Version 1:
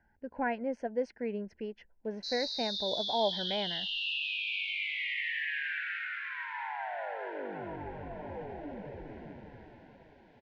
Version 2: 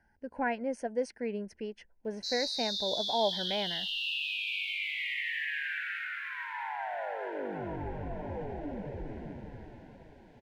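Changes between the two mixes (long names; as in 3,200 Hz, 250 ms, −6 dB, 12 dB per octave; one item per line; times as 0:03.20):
background: add spectral tilt −2 dB per octave
master: remove high-frequency loss of the air 190 metres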